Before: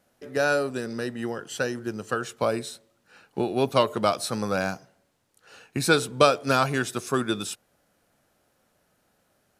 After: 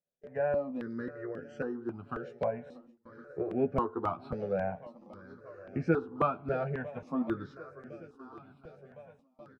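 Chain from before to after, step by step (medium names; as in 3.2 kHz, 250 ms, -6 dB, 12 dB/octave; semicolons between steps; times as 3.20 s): distance through air 300 m; doubling 12 ms -5.5 dB; shuffle delay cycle 1059 ms, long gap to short 1.5:1, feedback 64%, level -19 dB; low-pass that closes with the level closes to 2.4 kHz, closed at -22 dBFS; peaking EQ 3.5 kHz -13.5 dB 1.3 oct; gate with hold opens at -36 dBFS; stepped phaser 3.7 Hz 280–3800 Hz; trim -4 dB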